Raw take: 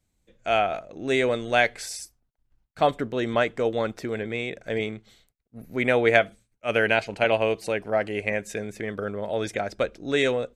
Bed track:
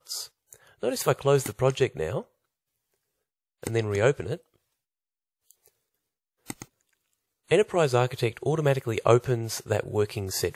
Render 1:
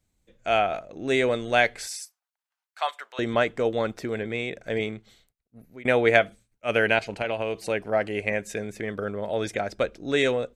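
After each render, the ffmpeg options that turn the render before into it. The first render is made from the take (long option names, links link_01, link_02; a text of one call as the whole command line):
ffmpeg -i in.wav -filter_complex "[0:a]asettb=1/sr,asplit=3[link_01][link_02][link_03];[link_01]atrim=end=1.874[link_04];[link_02]atrim=start=1.87:end=3.19,asetpts=PTS-STARTPTS,afade=type=in:duration=0.004:curve=qsin,afade=type=out:start_time=1.316:duration=0.004:curve=qsin,highpass=frequency=850:width=0.5412,highpass=frequency=850:width=1.3066[link_05];[link_03]atrim=start=3.186[link_06];[link_04][link_05]acrossfade=duration=0.004:curve1=hsin:curve2=qsin[link_07];[link_07][link_06]acrossfade=duration=0.004:curve1=qsin:curve2=hsin,asettb=1/sr,asplit=3[link_08][link_09][link_10];[link_08]atrim=end=6.984[link_11];[link_09]atrim=start=6.98:end=7.7,asetpts=PTS-STARTPTS,afade=type=in:duration=0.004:curve=qsin,afade=type=out:start_time=0.716:duration=0.004:curve=qsin,acompressor=threshold=-23dB:ratio=6:attack=3.2:release=140:knee=1:detection=peak[link_12];[link_10]atrim=start=7.696[link_13];[link_11][link_12]acrossfade=duration=0.004:curve1=hsin:curve2=qsin[link_14];[link_14][link_13]acrossfade=duration=0.004:curve1=qsin:curve2=hsin,asplit=2[link_15][link_16];[link_15]atrim=end=5.85,asetpts=PTS-STARTPTS,afade=type=out:start_time=4.84:duration=1.01:curve=qsin:silence=0.0749894[link_17];[link_16]atrim=start=5.85,asetpts=PTS-STARTPTS,afade=type=in:duration=0.004:curve=hsin:silence=0.0749894[link_18];[link_17][link_18]concat=n=2:v=0:a=1" out.wav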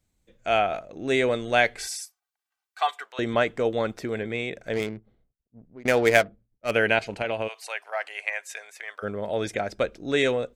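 ffmpeg -i in.wav -filter_complex "[0:a]asettb=1/sr,asplit=3[link_01][link_02][link_03];[link_01]atrim=end=1.784[link_04];[link_02]atrim=start=1.78:end=3.06,asetpts=PTS-STARTPTS,afade=type=in:duration=0.004:curve=qsin,afade=type=out:start_time=1.276:duration=0.004:curve=qsin,aecho=1:1:2.6:0.75,atrim=end_sample=56448[link_05];[link_03]atrim=start=3.056[link_06];[link_04][link_05]acrossfade=duration=0.004:curve1=hsin:curve2=qsin[link_07];[link_07][link_06]acrossfade=duration=0.004:curve1=qsin:curve2=hsin,asettb=1/sr,asplit=3[link_08][link_09][link_10];[link_08]atrim=end=4.734[link_11];[link_09]atrim=start=4.73:end=6.71,asetpts=PTS-STARTPTS,afade=type=in:duration=0.004:curve=qsin,afade=type=out:start_time=1.976:duration=0.004:curve=qsin,adynamicsmooth=sensitivity=4:basefreq=630[link_12];[link_10]atrim=start=6.706[link_13];[link_11][link_12]acrossfade=duration=0.004:curve1=hsin:curve2=qsin[link_14];[link_14][link_13]acrossfade=duration=0.004:curve1=qsin:curve2=hsin,asplit=3[link_15][link_16][link_17];[link_15]afade=type=out:start_time=7.47:duration=0.02[link_18];[link_16]highpass=frequency=790:width=0.5412,highpass=frequency=790:width=1.3066,afade=type=in:start_time=7.47:duration=0.02,afade=type=out:start_time=9.02:duration=0.02[link_19];[link_17]afade=type=in:start_time=9.02:duration=0.02[link_20];[link_18][link_19][link_20]amix=inputs=3:normalize=0" out.wav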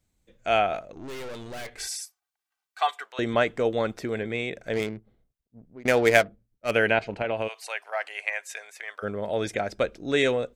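ffmpeg -i in.wav -filter_complex "[0:a]asettb=1/sr,asplit=3[link_01][link_02][link_03];[link_01]atrim=end=0.924[link_04];[link_02]atrim=start=0.92:end=1.8,asetpts=PTS-STARTPTS,afade=type=in:duration=0.004:curve=qsin,afade=type=out:start_time=0.876:duration=0.004:curve=qsin,aeval=exprs='(tanh(63.1*val(0)+0.6)-tanh(0.6))/63.1':channel_layout=same[link_05];[link_03]atrim=start=1.796[link_06];[link_04][link_05]acrossfade=duration=0.004:curve1=hsin:curve2=qsin[link_07];[link_07][link_06]acrossfade=duration=0.004:curve1=qsin:curve2=hsin,asplit=3[link_08][link_09][link_10];[link_08]afade=type=out:start_time=6.9:duration=0.02[link_11];[link_09]aemphasis=mode=reproduction:type=75fm,afade=type=in:start_time=6.9:duration=0.02,afade=type=out:start_time=7.36:duration=0.02[link_12];[link_10]afade=type=in:start_time=7.36:duration=0.02[link_13];[link_11][link_12][link_13]amix=inputs=3:normalize=0" out.wav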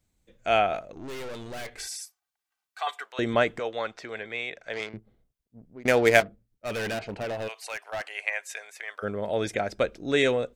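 ffmpeg -i in.wav -filter_complex "[0:a]asettb=1/sr,asplit=3[link_01][link_02][link_03];[link_01]atrim=end=1.804[link_04];[link_02]atrim=start=1.8:end=2.87,asetpts=PTS-STARTPTS,afade=type=in:duration=0.004:curve=qsin,afade=type=out:start_time=1.066:duration=0.004:curve=qsin,acompressor=threshold=-38dB:ratio=1.5:attack=3.2:release=140:knee=1:detection=peak[link_05];[link_03]atrim=start=2.866[link_06];[link_04][link_05]acrossfade=duration=0.004:curve1=hsin:curve2=qsin[link_07];[link_07][link_06]acrossfade=duration=0.004:curve1=qsin:curve2=hsin,asettb=1/sr,asplit=3[link_08][link_09][link_10];[link_08]atrim=end=3.594[link_11];[link_09]atrim=start=3.59:end=4.94,asetpts=PTS-STARTPTS,afade=type=in:duration=0.004:curve=qsin,afade=type=out:start_time=1.346:duration=0.004:curve=qsin,acrossover=split=590 7100:gain=0.178 1 0.1[link_12][link_13][link_14];[link_12][link_13][link_14]amix=inputs=3:normalize=0[link_15];[link_10]atrim=start=4.936[link_16];[link_11][link_15]acrossfade=duration=0.004:curve1=hsin:curve2=qsin[link_17];[link_17][link_16]acrossfade=duration=0.004:curve1=qsin:curve2=hsin,asettb=1/sr,asplit=3[link_18][link_19][link_20];[link_18]atrim=end=6.204[link_21];[link_19]atrim=start=6.2:end=8.03,asetpts=PTS-STARTPTS,afade=type=in:duration=0.004:curve=qsin,afade=type=out:start_time=1.826:duration=0.004:curve=qsin,volume=28.5dB,asoftclip=hard,volume=-28.5dB[link_22];[link_20]atrim=start=8.026[link_23];[link_21][link_22]acrossfade=duration=0.004:curve1=hsin:curve2=qsin[link_24];[link_24][link_23]acrossfade=duration=0.004:curve1=qsin:curve2=hsin" out.wav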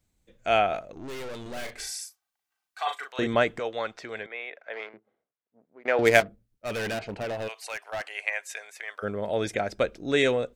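ffmpeg -i in.wav -filter_complex "[0:a]asettb=1/sr,asplit=3[link_01][link_02][link_03];[link_01]atrim=end=1.424[link_04];[link_02]atrim=start=1.42:end=3.27,asetpts=PTS-STARTPTS,afade=type=in:duration=0.004:curve=qsin,afade=type=out:start_time=1.846:duration=0.004:curve=qsin,asplit=2[link_05][link_06];[link_06]adelay=38,volume=-5dB[link_07];[link_05][link_07]amix=inputs=2:normalize=0,atrim=end_sample=81585[link_08];[link_03]atrim=start=3.266[link_09];[link_04][link_08]acrossfade=duration=0.004:curve1=hsin:curve2=qsin[link_10];[link_10][link_09]acrossfade=duration=0.004:curve1=qsin:curve2=hsin,asettb=1/sr,asplit=3[link_11][link_12][link_13];[link_11]atrim=end=4.264[link_14];[link_12]atrim=start=4.26:end=5.99,asetpts=PTS-STARTPTS,afade=type=in:duration=0.004:curve=qsin,afade=type=out:start_time=1.726:duration=0.004:curve=qsin,highpass=500,lowpass=2100[link_15];[link_13]atrim=start=5.986[link_16];[link_14][link_15]acrossfade=duration=0.004:curve1=hsin:curve2=qsin[link_17];[link_17][link_16]acrossfade=duration=0.004:curve1=qsin:curve2=hsin" out.wav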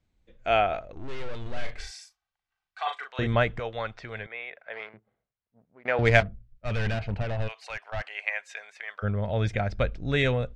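ffmpeg -i in.wav -af "lowpass=3900,asubboost=boost=12:cutoff=96" out.wav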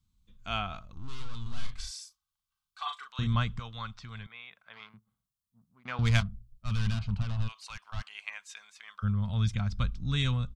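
ffmpeg -i in.wav -af "firequalizer=gain_entry='entry(210,0);entry(340,-17);entry(570,-23);entry(1100,0);entry(1800,-15);entry(3300,0);entry(9000,5)':delay=0.05:min_phase=1" out.wav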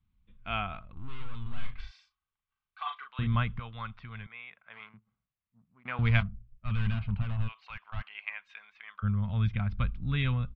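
ffmpeg -i in.wav -af "lowpass=frequency=2900:width=0.5412,lowpass=frequency=2900:width=1.3066,equalizer=frequency=2200:width_type=o:width=0.65:gain=3.5" out.wav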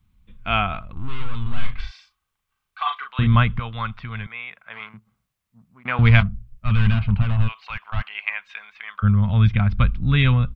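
ffmpeg -i in.wav -af "volume=12dB,alimiter=limit=-2dB:level=0:latency=1" out.wav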